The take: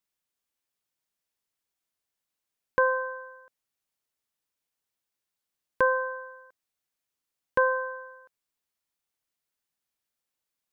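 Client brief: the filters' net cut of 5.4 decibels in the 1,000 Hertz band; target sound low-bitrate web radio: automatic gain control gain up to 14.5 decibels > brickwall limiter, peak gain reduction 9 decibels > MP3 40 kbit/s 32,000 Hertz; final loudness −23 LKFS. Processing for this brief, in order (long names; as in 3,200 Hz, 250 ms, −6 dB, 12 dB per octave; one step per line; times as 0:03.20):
parametric band 1,000 Hz −5.5 dB
automatic gain control gain up to 14.5 dB
brickwall limiter −23.5 dBFS
level +12 dB
MP3 40 kbit/s 32,000 Hz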